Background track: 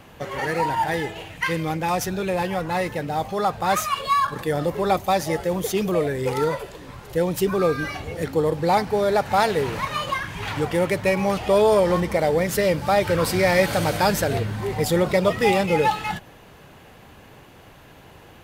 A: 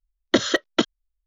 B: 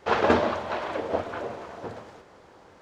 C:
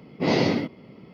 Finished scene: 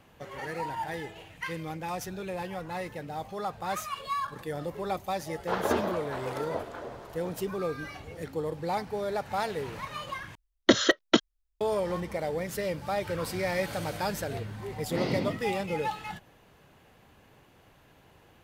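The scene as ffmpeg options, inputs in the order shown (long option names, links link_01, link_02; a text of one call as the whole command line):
ffmpeg -i bed.wav -i cue0.wav -i cue1.wav -i cue2.wav -filter_complex "[0:a]volume=-11.5dB[link_01];[2:a]equalizer=frequency=2500:width_type=o:width=0.36:gain=-6[link_02];[3:a]asubboost=boost=10:cutoff=240[link_03];[link_01]asplit=2[link_04][link_05];[link_04]atrim=end=10.354[link_06];[1:a]atrim=end=1.26,asetpts=PTS-STARTPTS,volume=-1.5dB[link_07];[link_05]atrim=start=11.606[link_08];[link_02]atrim=end=2.81,asetpts=PTS-STARTPTS,volume=-7dB,afade=type=in:duration=0.004:curve=hsin,afade=type=out:start_time=2.806:duration=0.004:curve=hsin,adelay=238581S[link_09];[link_03]atrim=end=1.13,asetpts=PTS-STARTPTS,volume=-10.5dB,afade=type=in:duration=0.004:curve=hsin,afade=type=out:start_time=1.126:duration=0.004:curve=hsin,adelay=14700[link_10];[link_06][link_07]acrossfade=duration=0.004:curve1=hsin:curve2=hsin[link_11];[link_11][link_08]acrossfade=duration=0.004:curve1=hsin:curve2=hsin[link_12];[link_12][link_09][link_10]amix=inputs=3:normalize=0" out.wav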